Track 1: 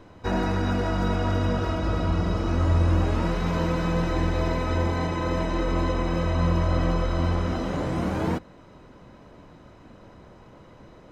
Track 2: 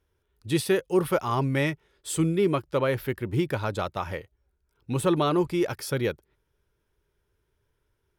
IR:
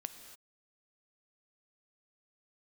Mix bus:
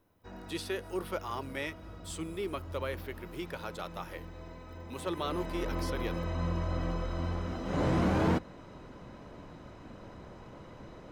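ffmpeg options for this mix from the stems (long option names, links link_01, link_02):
-filter_complex "[0:a]afade=type=in:start_time=4.89:duration=0.8:silence=0.251189,afade=type=in:start_time=7.64:duration=0.22:silence=0.316228[link_01];[1:a]highpass=180,aemphasis=mode=production:type=bsi,volume=-11dB,asplit=2[link_02][link_03];[link_03]volume=-16.5dB[link_04];[2:a]atrim=start_sample=2205[link_05];[link_04][link_05]afir=irnorm=-1:irlink=0[link_06];[link_01][link_02][link_06]amix=inputs=3:normalize=0,acrossover=split=6000[link_07][link_08];[link_08]acompressor=threshold=-57dB:ratio=4:attack=1:release=60[link_09];[link_07][link_09]amix=inputs=2:normalize=0,volume=22dB,asoftclip=hard,volume=-22dB"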